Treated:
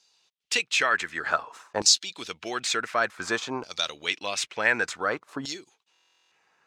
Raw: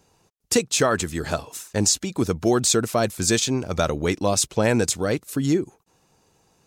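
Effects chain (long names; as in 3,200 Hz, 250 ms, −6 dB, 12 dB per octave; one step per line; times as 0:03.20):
running median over 3 samples
auto-filter band-pass saw down 0.55 Hz 910–4,600 Hz
buffer that repeats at 0:05.92, samples 1,024, times 16
level +8 dB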